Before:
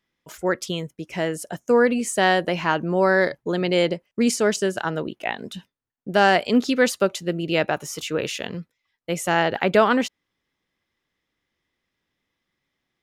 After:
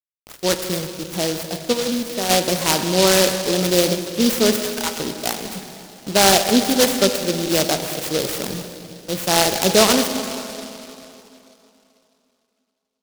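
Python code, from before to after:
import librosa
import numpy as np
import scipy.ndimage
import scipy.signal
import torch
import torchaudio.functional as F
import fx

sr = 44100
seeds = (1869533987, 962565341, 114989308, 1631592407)

y = fx.level_steps(x, sr, step_db=13, at=(1.72, 2.29), fade=0.02)
y = fx.steep_highpass(y, sr, hz=770.0, slope=72, at=(4.59, 5.0))
y = fx.transient(y, sr, attack_db=-3, sustain_db=5, at=(8.39, 9.13))
y = fx.quant_dither(y, sr, seeds[0], bits=6, dither='none')
y = fx.rev_plate(y, sr, seeds[1], rt60_s=3.0, hf_ratio=0.7, predelay_ms=0, drr_db=6.0)
y = fx.noise_mod_delay(y, sr, seeds[2], noise_hz=4100.0, depth_ms=0.15)
y = F.gain(torch.from_numpy(y), 2.5).numpy()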